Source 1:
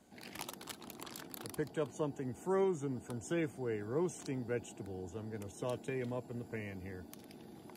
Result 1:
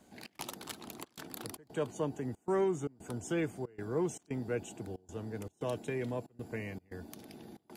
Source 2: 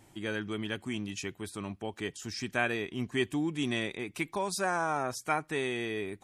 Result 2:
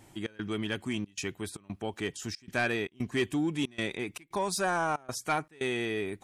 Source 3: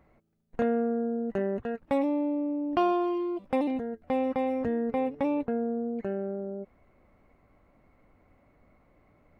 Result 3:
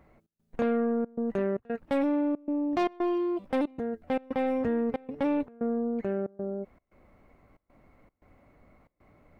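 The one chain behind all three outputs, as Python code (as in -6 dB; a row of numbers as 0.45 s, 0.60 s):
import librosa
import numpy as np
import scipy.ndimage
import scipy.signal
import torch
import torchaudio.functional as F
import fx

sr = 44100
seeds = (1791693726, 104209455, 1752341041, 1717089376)

y = 10.0 ** (-23.0 / 20.0) * np.tanh(x / 10.0 ** (-23.0 / 20.0))
y = fx.step_gate(y, sr, bpm=115, pattern='xx.xxxxx.x', floor_db=-24.0, edge_ms=4.5)
y = y * librosa.db_to_amplitude(3.0)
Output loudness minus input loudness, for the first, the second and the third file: +2.0 LU, +1.0 LU, -0.5 LU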